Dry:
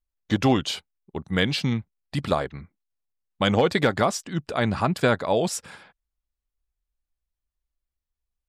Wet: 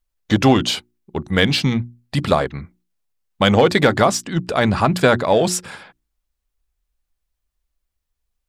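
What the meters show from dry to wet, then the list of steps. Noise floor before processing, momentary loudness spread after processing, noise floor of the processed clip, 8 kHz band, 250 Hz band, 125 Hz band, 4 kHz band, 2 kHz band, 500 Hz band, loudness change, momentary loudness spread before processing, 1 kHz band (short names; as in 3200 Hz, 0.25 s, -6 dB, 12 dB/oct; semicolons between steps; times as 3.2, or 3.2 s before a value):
under -85 dBFS, 11 LU, -78 dBFS, +8.0 dB, +6.5 dB, +6.5 dB, +7.0 dB, +7.0 dB, +7.0 dB, +6.5 dB, 12 LU, +7.0 dB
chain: notches 60/120/180/240/300/360 Hz; in parallel at -10 dB: overloaded stage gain 27 dB; on the sum: gain +6 dB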